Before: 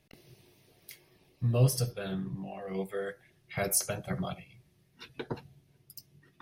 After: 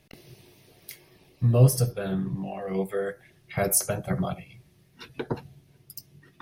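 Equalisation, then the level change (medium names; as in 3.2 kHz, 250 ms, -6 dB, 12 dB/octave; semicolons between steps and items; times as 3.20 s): dynamic bell 3.5 kHz, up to -8 dB, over -53 dBFS, Q 0.7; +7.0 dB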